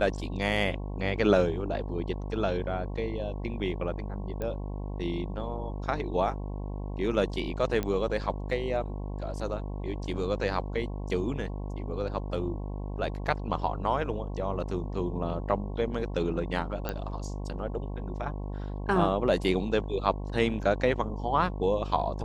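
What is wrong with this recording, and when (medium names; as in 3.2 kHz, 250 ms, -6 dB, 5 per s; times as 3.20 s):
buzz 50 Hz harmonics 22 -35 dBFS
4.42 s: pop -21 dBFS
7.83 s: pop -17 dBFS
16.89 s: pop -16 dBFS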